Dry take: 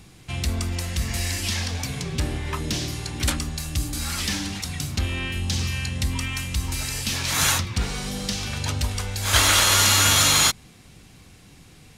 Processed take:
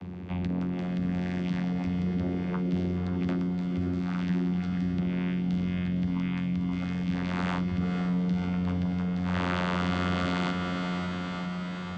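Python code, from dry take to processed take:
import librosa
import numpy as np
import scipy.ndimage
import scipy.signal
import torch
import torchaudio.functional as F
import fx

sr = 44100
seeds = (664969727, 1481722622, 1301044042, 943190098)

p1 = scipy.signal.sosfilt(scipy.signal.butter(2, 2300.0, 'lowpass', fs=sr, output='sos'), x)
p2 = fx.low_shelf(p1, sr, hz=150.0, db=6.0)
p3 = 10.0 ** (-14.5 / 20.0) * np.tanh(p2 / 10.0 ** (-14.5 / 20.0))
p4 = fx.vocoder(p3, sr, bands=16, carrier='saw', carrier_hz=89.7)
p5 = p4 + fx.echo_diffused(p4, sr, ms=538, feedback_pct=54, wet_db=-6.5, dry=0)
p6 = fx.env_flatten(p5, sr, amount_pct=50)
y = p6 * 10.0 ** (-4.5 / 20.0)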